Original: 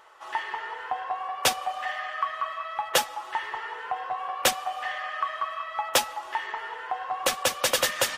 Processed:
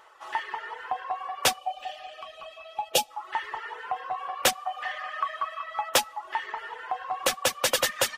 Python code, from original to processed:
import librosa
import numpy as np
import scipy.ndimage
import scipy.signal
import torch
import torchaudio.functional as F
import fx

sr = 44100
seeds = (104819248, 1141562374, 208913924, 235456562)

y = fx.dereverb_blind(x, sr, rt60_s=0.65)
y = fx.spec_box(y, sr, start_s=1.58, length_s=1.52, low_hz=880.0, high_hz=2300.0, gain_db=-16)